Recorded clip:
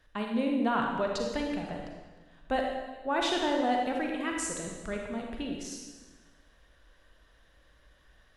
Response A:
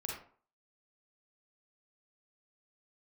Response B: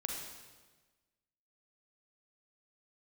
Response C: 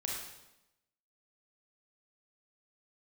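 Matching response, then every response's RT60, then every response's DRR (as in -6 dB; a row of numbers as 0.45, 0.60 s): B; 0.45, 1.3, 0.90 s; -2.0, 0.5, -2.5 dB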